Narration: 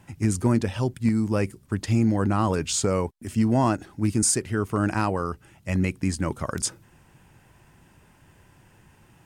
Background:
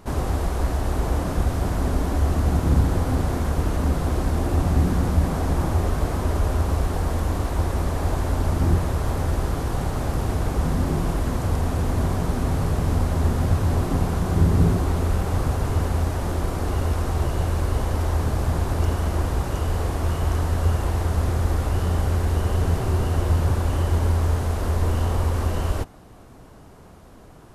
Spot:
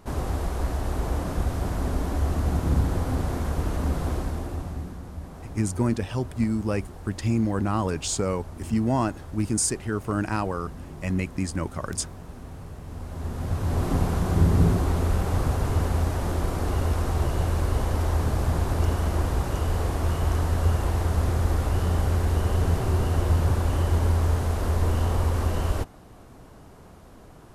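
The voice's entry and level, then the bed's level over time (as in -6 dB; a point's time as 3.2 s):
5.35 s, -2.5 dB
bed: 4.11 s -4 dB
5 s -17.5 dB
12.84 s -17.5 dB
13.89 s -1.5 dB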